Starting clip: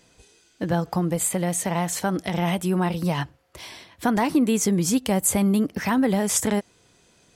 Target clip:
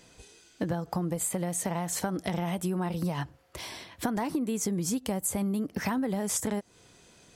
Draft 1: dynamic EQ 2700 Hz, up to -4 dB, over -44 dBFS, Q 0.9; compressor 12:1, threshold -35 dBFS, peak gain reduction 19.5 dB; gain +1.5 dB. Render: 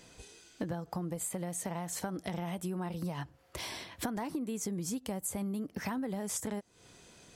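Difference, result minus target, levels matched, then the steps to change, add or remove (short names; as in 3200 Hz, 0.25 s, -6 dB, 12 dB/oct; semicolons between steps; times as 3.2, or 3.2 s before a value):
compressor: peak gain reduction +6.5 dB
change: compressor 12:1, threshold -28 dBFS, peak gain reduction 13 dB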